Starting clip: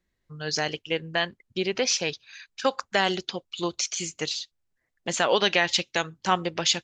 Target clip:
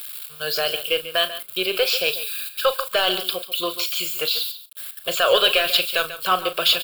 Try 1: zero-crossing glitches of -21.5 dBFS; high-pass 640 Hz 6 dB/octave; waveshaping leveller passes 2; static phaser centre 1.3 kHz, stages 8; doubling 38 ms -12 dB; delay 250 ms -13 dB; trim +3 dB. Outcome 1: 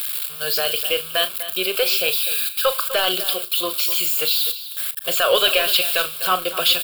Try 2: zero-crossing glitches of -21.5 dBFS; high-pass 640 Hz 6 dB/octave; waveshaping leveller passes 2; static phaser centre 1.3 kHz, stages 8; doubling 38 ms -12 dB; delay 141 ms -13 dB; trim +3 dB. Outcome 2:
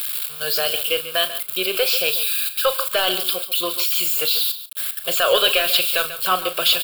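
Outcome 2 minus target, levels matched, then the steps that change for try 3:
zero-crossing glitches: distortion +9 dB
change: zero-crossing glitches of -30.5 dBFS

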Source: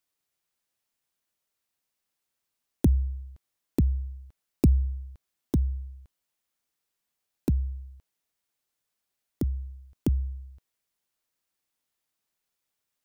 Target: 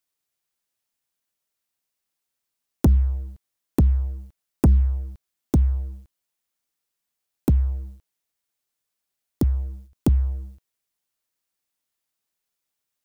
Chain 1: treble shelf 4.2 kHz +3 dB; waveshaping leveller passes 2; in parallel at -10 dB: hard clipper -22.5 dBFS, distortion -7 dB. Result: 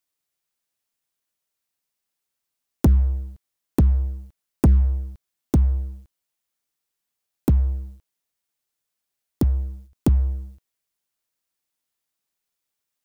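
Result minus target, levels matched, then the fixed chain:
hard clipper: distortion -5 dB
treble shelf 4.2 kHz +3 dB; waveshaping leveller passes 2; in parallel at -10 dB: hard clipper -34.5 dBFS, distortion -2 dB

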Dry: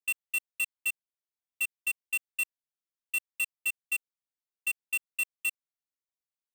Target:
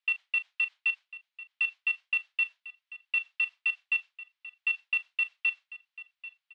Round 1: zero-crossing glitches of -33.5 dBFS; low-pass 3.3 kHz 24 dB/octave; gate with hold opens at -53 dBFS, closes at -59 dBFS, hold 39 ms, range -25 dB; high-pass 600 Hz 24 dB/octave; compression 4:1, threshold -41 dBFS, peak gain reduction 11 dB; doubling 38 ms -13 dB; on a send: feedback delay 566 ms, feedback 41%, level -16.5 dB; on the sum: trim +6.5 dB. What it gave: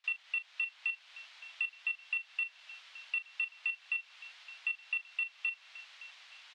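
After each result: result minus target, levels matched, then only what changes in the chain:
compression: peak gain reduction +7 dB; zero-crossing glitches: distortion +10 dB; echo 223 ms early
change: compression 4:1, threshold -31.5 dBFS, peak gain reduction 4 dB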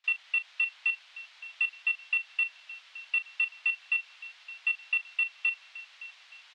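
zero-crossing glitches: distortion +10 dB; echo 223 ms early
change: zero-crossing glitches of -43.5 dBFS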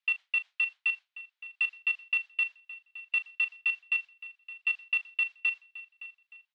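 echo 223 ms early
change: feedback delay 789 ms, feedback 41%, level -16.5 dB

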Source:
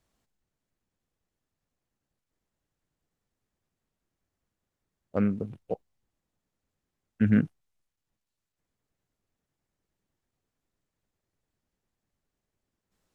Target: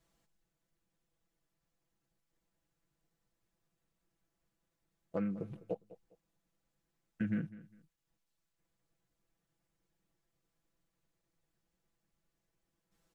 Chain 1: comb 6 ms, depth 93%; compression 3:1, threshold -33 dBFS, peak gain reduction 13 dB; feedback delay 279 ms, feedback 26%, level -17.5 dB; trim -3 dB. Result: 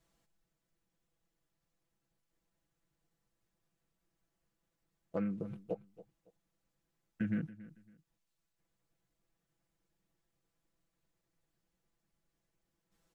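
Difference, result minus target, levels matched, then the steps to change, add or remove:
echo 76 ms late
change: feedback delay 203 ms, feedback 26%, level -17.5 dB

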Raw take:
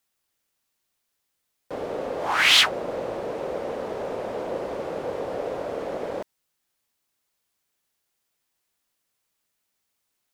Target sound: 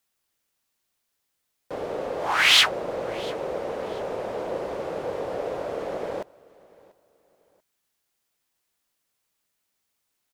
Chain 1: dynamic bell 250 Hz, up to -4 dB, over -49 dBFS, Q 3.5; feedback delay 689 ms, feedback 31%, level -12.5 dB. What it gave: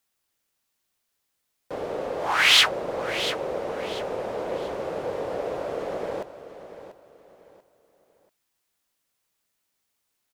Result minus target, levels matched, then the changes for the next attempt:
echo-to-direct +11 dB
change: feedback delay 689 ms, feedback 31%, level -23.5 dB

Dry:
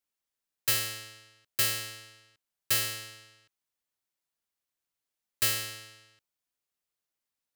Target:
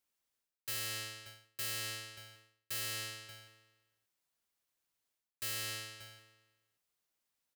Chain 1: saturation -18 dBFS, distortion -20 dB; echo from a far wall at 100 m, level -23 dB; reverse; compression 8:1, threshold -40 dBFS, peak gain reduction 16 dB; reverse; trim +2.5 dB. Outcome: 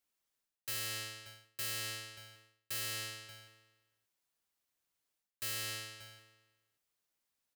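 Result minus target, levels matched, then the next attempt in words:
saturation: distortion +21 dB
saturation -6.5 dBFS, distortion -41 dB; echo from a far wall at 100 m, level -23 dB; reverse; compression 8:1, threshold -40 dBFS, peak gain reduction 17.5 dB; reverse; trim +2.5 dB

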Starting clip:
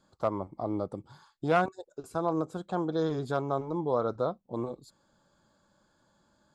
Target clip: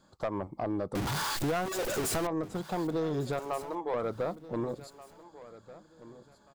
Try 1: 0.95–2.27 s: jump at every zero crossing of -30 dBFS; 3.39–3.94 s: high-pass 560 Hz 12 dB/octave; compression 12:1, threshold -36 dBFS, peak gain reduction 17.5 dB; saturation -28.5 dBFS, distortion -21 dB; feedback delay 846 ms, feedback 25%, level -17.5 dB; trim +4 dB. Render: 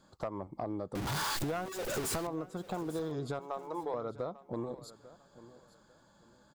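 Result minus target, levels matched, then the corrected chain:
echo 636 ms early; compression: peak gain reduction +7.5 dB
0.95–2.27 s: jump at every zero crossing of -30 dBFS; 3.39–3.94 s: high-pass 560 Hz 12 dB/octave; compression 12:1, threshold -28 dBFS, peak gain reduction 10.5 dB; saturation -28.5 dBFS, distortion -13 dB; feedback delay 1482 ms, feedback 25%, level -17.5 dB; trim +4 dB

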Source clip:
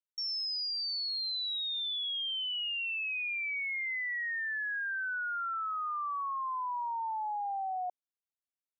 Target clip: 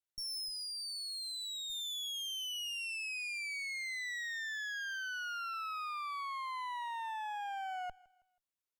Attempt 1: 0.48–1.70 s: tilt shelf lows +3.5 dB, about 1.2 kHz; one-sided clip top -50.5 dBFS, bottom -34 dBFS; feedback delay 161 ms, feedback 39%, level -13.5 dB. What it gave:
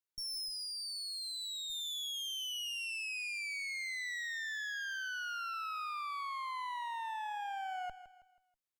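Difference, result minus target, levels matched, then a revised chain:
echo-to-direct +10 dB
0.48–1.70 s: tilt shelf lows +3.5 dB, about 1.2 kHz; one-sided clip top -50.5 dBFS, bottom -34 dBFS; feedback delay 161 ms, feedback 39%, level -23.5 dB

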